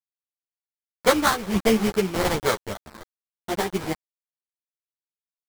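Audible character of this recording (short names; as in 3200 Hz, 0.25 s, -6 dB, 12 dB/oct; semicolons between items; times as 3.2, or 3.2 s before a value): a quantiser's noise floor 6-bit, dither none; tremolo triangle 1.3 Hz, depth 65%; aliases and images of a low sample rate 2700 Hz, jitter 20%; a shimmering, thickened sound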